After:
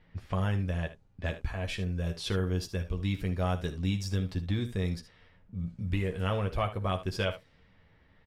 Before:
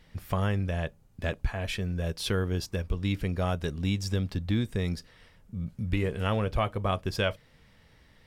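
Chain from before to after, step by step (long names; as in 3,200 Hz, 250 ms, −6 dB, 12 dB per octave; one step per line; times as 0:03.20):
low-pass that shuts in the quiet parts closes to 2,400 Hz, open at −26.5 dBFS
ambience of single reflections 11 ms −6.5 dB, 59 ms −15.5 dB, 76 ms −13.5 dB
level −4 dB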